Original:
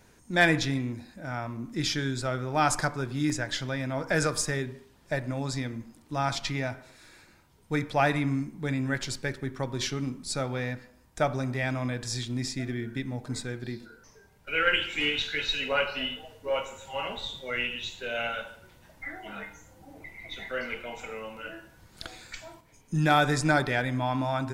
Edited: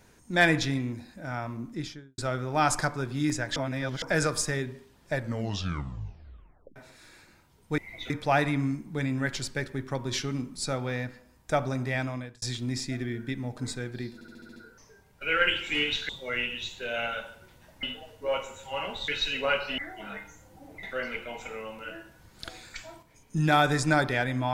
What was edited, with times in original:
1.54–2.18 s: studio fade out
3.56–4.02 s: reverse
5.14 s: tape stop 1.62 s
11.67–12.10 s: fade out
13.82 s: stutter 0.07 s, 7 plays
15.35–16.05 s: swap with 17.30–19.04 s
20.09–20.41 s: move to 7.78 s

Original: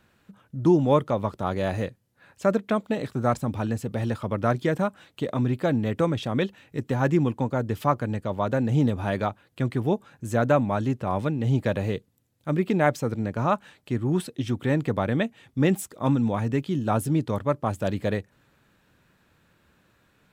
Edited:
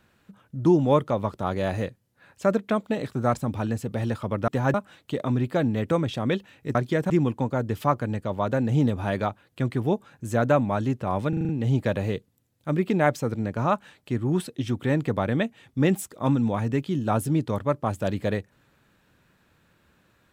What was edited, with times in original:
4.48–4.83 s: swap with 6.84–7.10 s
11.29 s: stutter 0.04 s, 6 plays

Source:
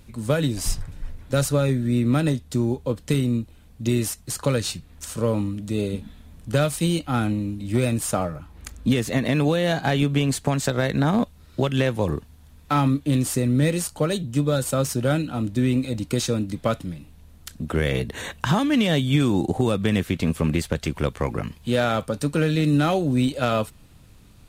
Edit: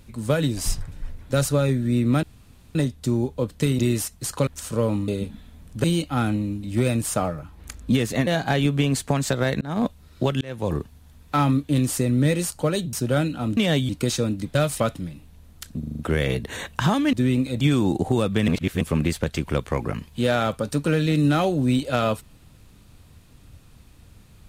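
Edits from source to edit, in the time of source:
2.23 s: insert room tone 0.52 s
3.27–3.85 s: delete
4.53–4.92 s: delete
5.53–5.80 s: delete
6.56–6.81 s: move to 16.65 s
9.24–9.64 s: delete
10.98–11.23 s: fade in
11.78–12.10 s: fade in
14.30–14.87 s: delete
15.51–15.99 s: swap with 18.78–19.10 s
17.64 s: stutter 0.04 s, 6 plays
19.97–20.30 s: reverse

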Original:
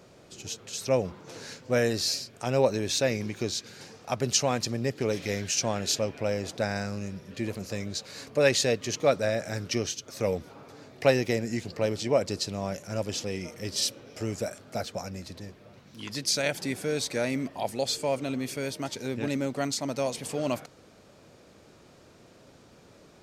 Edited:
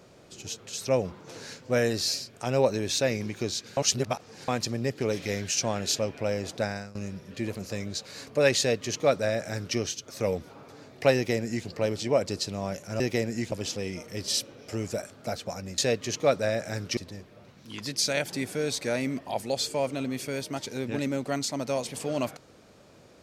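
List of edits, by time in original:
3.77–4.48 s: reverse
6.63–6.95 s: fade out, to -19 dB
8.58–9.77 s: copy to 15.26 s
11.15–11.67 s: copy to 13.00 s

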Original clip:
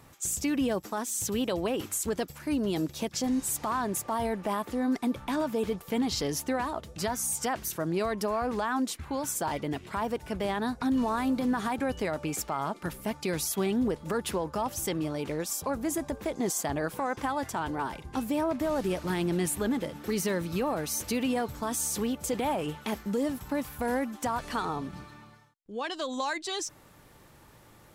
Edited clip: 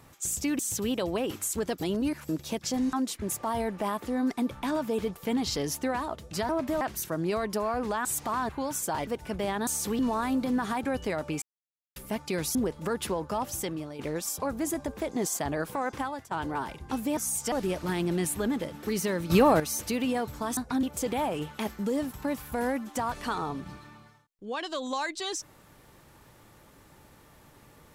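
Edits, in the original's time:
0.59–1.09 s: delete
2.31–2.79 s: reverse
3.43–3.87 s: swap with 8.73–9.02 s
7.14–7.49 s: swap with 18.41–18.73 s
9.60–10.08 s: delete
10.68–10.94 s: swap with 21.78–22.10 s
12.37–12.91 s: mute
13.50–13.79 s: delete
14.75–15.23 s: fade out, to -10 dB
17.20–17.55 s: fade out, to -18.5 dB
20.51–20.81 s: gain +9.5 dB

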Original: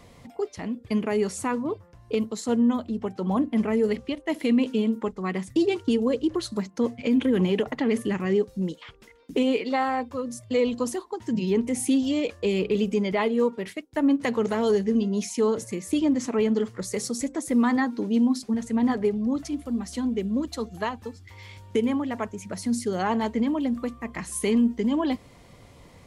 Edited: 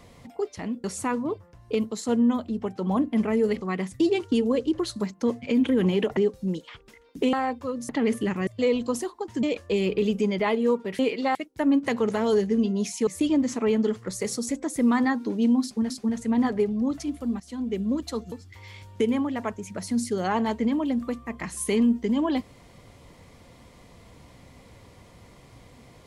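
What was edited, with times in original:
0.84–1.24 s: delete
4.01–5.17 s: delete
7.73–8.31 s: move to 10.39 s
9.47–9.83 s: move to 13.72 s
11.35–12.16 s: delete
15.44–15.79 s: delete
18.35–18.62 s: loop, 2 plays
19.85–20.24 s: fade in, from -15.5 dB
20.77–21.07 s: delete

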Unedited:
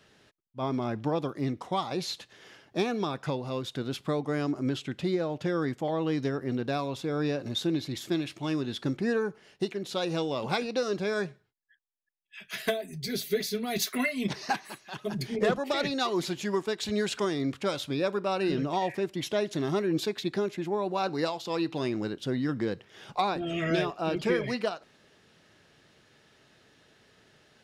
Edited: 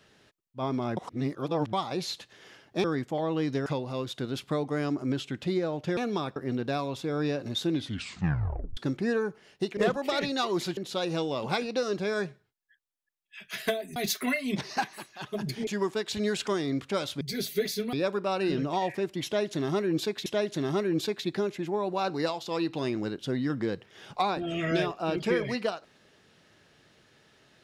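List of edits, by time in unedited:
0.97–1.73 s: reverse
2.84–3.23 s: swap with 5.54–6.36 s
7.73 s: tape stop 1.04 s
12.96–13.68 s: move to 17.93 s
15.39–16.39 s: move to 9.77 s
19.25–20.26 s: loop, 2 plays

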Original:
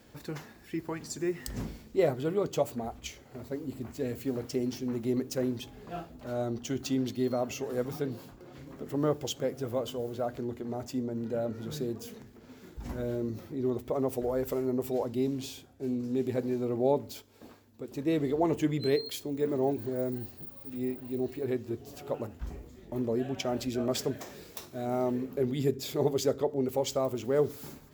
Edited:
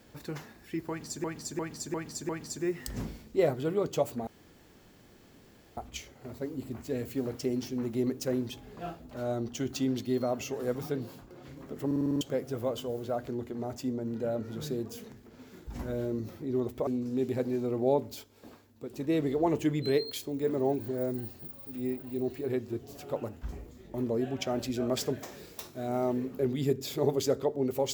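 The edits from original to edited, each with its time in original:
0.89–1.24 s: loop, 5 plays
2.87 s: insert room tone 1.50 s
8.96 s: stutter in place 0.05 s, 7 plays
13.97–15.85 s: delete

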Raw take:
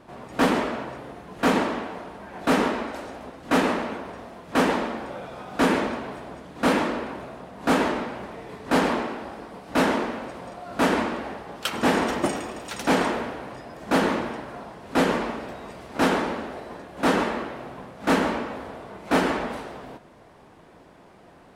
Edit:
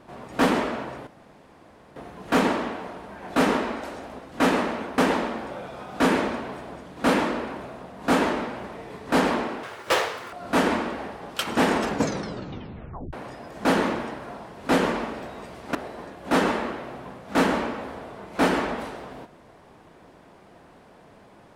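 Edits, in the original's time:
1.07 s: insert room tone 0.89 s
4.09–4.57 s: delete
9.22–10.59 s: speed 196%
12.00 s: tape stop 1.39 s
16.01–16.47 s: delete

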